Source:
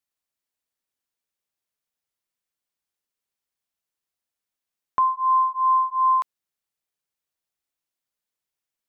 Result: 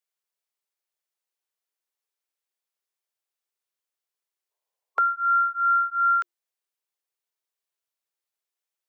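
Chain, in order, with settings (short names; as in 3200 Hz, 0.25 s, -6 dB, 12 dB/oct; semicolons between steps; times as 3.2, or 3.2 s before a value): frequency shift +340 Hz; spectral gain 4.51–5.21, 390–1100 Hz +10 dB; gain -2 dB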